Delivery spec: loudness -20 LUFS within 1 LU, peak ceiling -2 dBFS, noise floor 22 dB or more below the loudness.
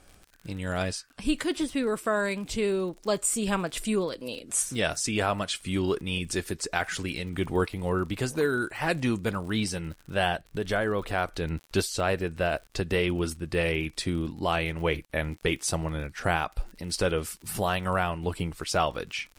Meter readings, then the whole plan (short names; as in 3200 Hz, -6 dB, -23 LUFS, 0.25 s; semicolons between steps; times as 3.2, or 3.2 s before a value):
ticks 52/s; loudness -29.0 LUFS; peak -9.5 dBFS; loudness target -20.0 LUFS
-> de-click; gain +9 dB; limiter -2 dBFS